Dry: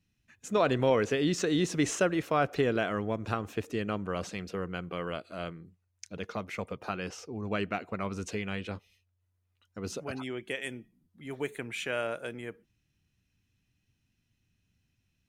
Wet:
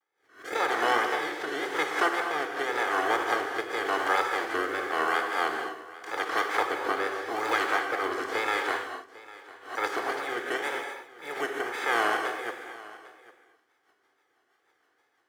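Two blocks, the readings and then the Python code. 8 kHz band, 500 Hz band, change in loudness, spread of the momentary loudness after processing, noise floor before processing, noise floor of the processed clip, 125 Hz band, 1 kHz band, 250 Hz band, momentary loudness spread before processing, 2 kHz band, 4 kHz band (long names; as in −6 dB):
−2.0 dB, +0.5 dB, +4.0 dB, 13 LU, −77 dBFS, −72 dBFS, −20.5 dB, +9.5 dB, −5.0 dB, 15 LU, +10.0 dB, +5.0 dB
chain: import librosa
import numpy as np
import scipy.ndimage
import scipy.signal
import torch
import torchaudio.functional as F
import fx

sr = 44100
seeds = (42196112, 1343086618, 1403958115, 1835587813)

p1 = fx.spec_flatten(x, sr, power=0.23)
p2 = scipy.signal.sosfilt(scipy.signal.butter(2, 490.0, 'highpass', fs=sr, output='sos'), p1)
p3 = p2 + 0.82 * np.pad(p2, (int(2.5 * sr / 1000.0), 0))[:len(p2)]
p4 = fx.rider(p3, sr, range_db=5, speed_s=0.5)
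p5 = scipy.signal.savgol_filter(p4, 41, 4, mode='constant')
p6 = fx.rotary_switch(p5, sr, hz=0.9, then_hz=6.3, switch_at_s=12.25)
p7 = fx.wow_flutter(p6, sr, seeds[0], rate_hz=2.1, depth_cents=140.0)
p8 = p7 + fx.echo_single(p7, sr, ms=801, db=-19.0, dry=0)
p9 = fx.rev_gated(p8, sr, seeds[1], gate_ms=280, shape='flat', drr_db=3.0)
p10 = fx.pre_swell(p9, sr, db_per_s=130.0)
y = p10 * 10.0 ** (9.0 / 20.0)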